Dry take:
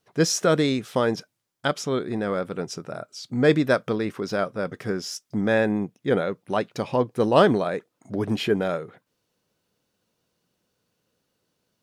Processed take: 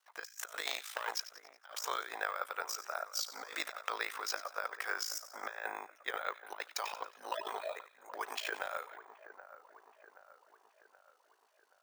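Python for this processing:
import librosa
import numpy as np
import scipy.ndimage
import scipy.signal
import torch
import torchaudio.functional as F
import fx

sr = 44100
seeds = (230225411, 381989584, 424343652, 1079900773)

y = fx.hpss_only(x, sr, part='harmonic', at=(7.13, 7.75), fade=0.02)
y = fx.peak_eq(y, sr, hz=3800.0, db=-6.0, octaves=2.0)
y = y * np.sin(2.0 * np.pi * 27.0 * np.arange(len(y)) / sr)
y = fx.dynamic_eq(y, sr, hz=7600.0, q=0.93, threshold_db=-55.0, ratio=4.0, max_db=6)
y = fx.tube_stage(y, sr, drive_db=21.0, bias=0.8, at=(0.66, 1.15))
y = scipy.signal.sosfilt(scipy.signal.butter(4, 860.0, 'highpass', fs=sr, output='sos'), y)
y = fx.over_compress(y, sr, threshold_db=-41.0, ratio=-0.5)
y = fx.echo_split(y, sr, split_hz=1800.0, low_ms=776, high_ms=92, feedback_pct=52, wet_db=-14)
y = np.repeat(scipy.signal.resample_poly(y, 1, 2), 2)[:len(y)]
y = fx.band_squash(y, sr, depth_pct=70, at=(5.43, 5.85))
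y = y * librosa.db_to_amplitude(2.0)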